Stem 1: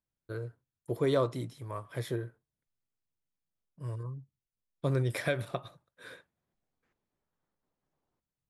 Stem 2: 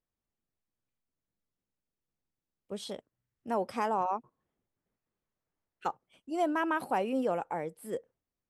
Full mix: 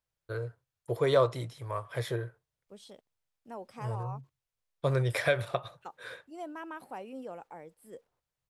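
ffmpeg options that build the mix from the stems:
-filter_complex "[0:a]firequalizer=gain_entry='entry(120,0);entry(230,-11);entry(480,3)':delay=0.05:min_phase=1,volume=2dB[a];[1:a]highshelf=f=6.2k:g=7.5,acrusher=bits=10:mix=0:aa=0.000001,volume=-12dB[b];[a][b]amix=inputs=2:normalize=0,highshelf=f=8.8k:g=-7"

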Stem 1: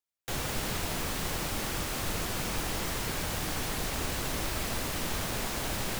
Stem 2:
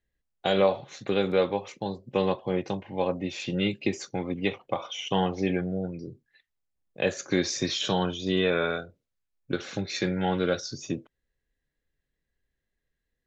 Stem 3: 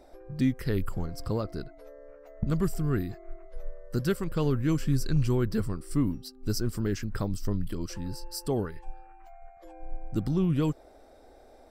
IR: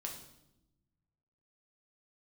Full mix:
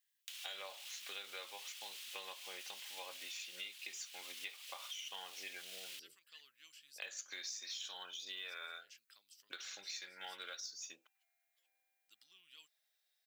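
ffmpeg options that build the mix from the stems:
-filter_complex "[0:a]alimiter=level_in=7dB:limit=-24dB:level=0:latency=1,volume=-7dB,volume=0.5dB[a];[1:a]highpass=1.3k,aemphasis=mode=production:type=75kf,acrusher=bits=6:mode=log:mix=0:aa=0.000001,volume=-6dB[b];[2:a]adelay=1950,volume=-18dB[c];[a][c]amix=inputs=2:normalize=0,highpass=f=3k:t=q:w=2.6,acompressor=threshold=-45dB:ratio=4,volume=0dB[d];[b][d]amix=inputs=2:normalize=0,acompressor=threshold=-46dB:ratio=4"

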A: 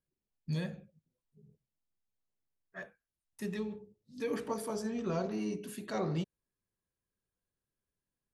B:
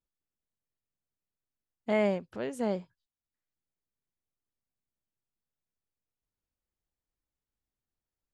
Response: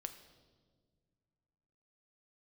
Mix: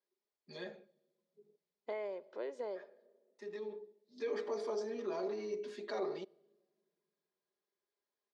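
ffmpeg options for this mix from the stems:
-filter_complex "[0:a]aecho=1:1:4.9:0.88,alimiter=level_in=4dB:limit=-24dB:level=0:latency=1:release=13,volume=-4dB,volume=-1.5dB,asplit=2[a][b];[b]volume=-14dB[c];[1:a]aecho=1:1:2:0.37,acompressor=threshold=-32dB:ratio=10,volume=-7dB,asplit=3[d][e][f];[e]volume=-5dB[g];[f]apad=whole_len=367961[h];[a][h]sidechaincompress=threshold=-54dB:ratio=8:attack=16:release=1230[i];[2:a]atrim=start_sample=2205[j];[c][g]amix=inputs=2:normalize=0[k];[k][j]afir=irnorm=-1:irlink=0[l];[i][d][l]amix=inputs=3:normalize=0,highpass=f=340:w=0.5412,highpass=f=340:w=1.3066,equalizer=f=370:t=q:w=4:g=3,equalizer=f=1.5k:t=q:w=4:g=-5,equalizer=f=2.8k:t=q:w=4:g=-9,lowpass=f=5.1k:w=0.5412,lowpass=f=5.1k:w=1.3066"

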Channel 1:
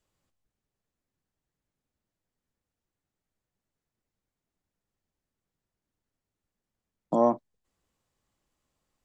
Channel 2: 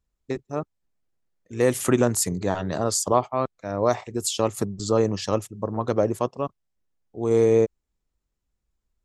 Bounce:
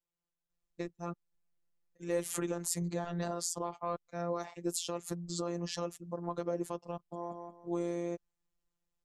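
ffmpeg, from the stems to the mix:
-filter_complex "[0:a]volume=-13dB,asplit=2[a][b];[b]volume=-5.5dB[c];[1:a]alimiter=limit=-16.5dB:level=0:latency=1:release=205,adelay=500,volume=-3.5dB[d];[c]aecho=0:1:178|356|534|712:1|0.25|0.0625|0.0156[e];[a][d][e]amix=inputs=3:normalize=0,afftfilt=real='hypot(re,im)*cos(PI*b)':imag='0':win_size=1024:overlap=0.75"

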